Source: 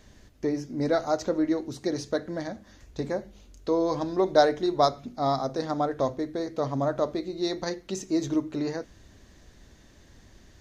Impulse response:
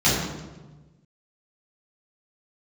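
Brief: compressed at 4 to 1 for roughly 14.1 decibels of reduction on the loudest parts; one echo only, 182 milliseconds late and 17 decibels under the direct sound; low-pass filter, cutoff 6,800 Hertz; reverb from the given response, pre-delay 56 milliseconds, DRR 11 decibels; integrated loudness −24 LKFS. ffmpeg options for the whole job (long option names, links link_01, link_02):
-filter_complex "[0:a]lowpass=6800,acompressor=threshold=-31dB:ratio=4,aecho=1:1:182:0.141,asplit=2[link_01][link_02];[1:a]atrim=start_sample=2205,adelay=56[link_03];[link_02][link_03]afir=irnorm=-1:irlink=0,volume=-29.5dB[link_04];[link_01][link_04]amix=inputs=2:normalize=0,volume=10.5dB"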